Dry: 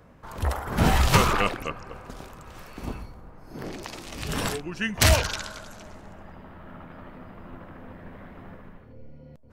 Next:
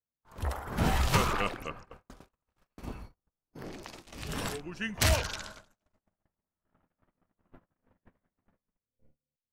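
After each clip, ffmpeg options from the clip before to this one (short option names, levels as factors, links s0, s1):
-af "agate=range=0.00794:threshold=0.0126:ratio=16:detection=peak,volume=0.447"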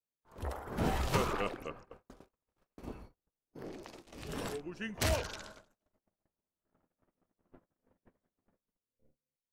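-af "equalizer=f=410:w=0.77:g=7.5,volume=0.422"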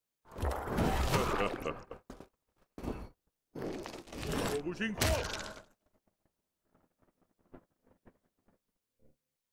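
-af "acompressor=threshold=0.0178:ratio=2.5,volume=2"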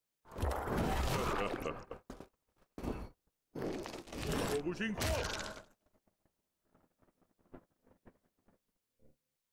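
-af "alimiter=level_in=1.19:limit=0.0631:level=0:latency=1:release=54,volume=0.841"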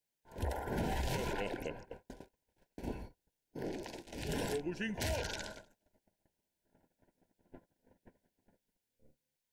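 -af "asuperstop=centerf=1200:order=12:qfactor=3.3,volume=0.891"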